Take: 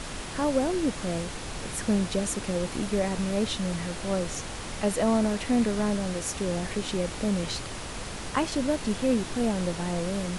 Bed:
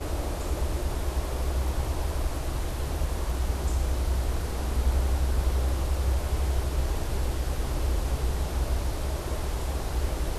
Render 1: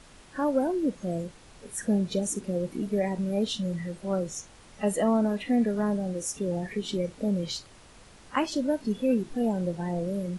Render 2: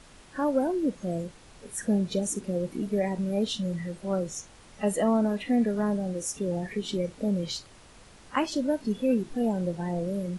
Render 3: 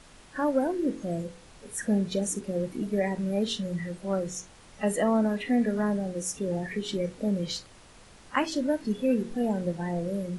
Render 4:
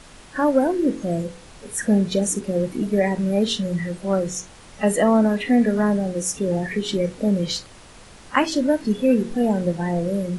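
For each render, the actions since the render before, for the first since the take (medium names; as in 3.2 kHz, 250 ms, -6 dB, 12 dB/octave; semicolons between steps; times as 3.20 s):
noise print and reduce 16 dB
no audible change
de-hum 45.9 Hz, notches 11; dynamic bell 1.8 kHz, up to +5 dB, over -51 dBFS, Q 2.6
trim +7.5 dB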